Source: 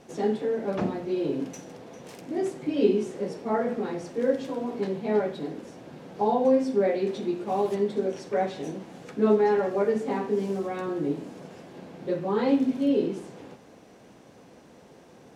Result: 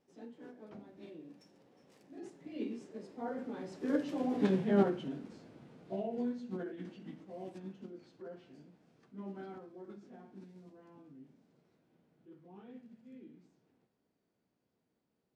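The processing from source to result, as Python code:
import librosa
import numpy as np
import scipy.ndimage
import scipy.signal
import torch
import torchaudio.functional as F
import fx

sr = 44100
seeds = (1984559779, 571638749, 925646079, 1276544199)

y = fx.doppler_pass(x, sr, speed_mps=28, closest_m=7.9, pass_at_s=4.51)
y = fx.formant_shift(y, sr, semitones=-3)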